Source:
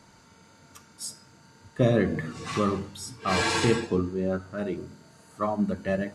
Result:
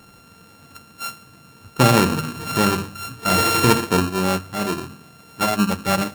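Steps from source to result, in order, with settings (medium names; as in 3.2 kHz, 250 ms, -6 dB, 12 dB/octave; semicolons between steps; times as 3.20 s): sorted samples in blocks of 32 samples; trim +7 dB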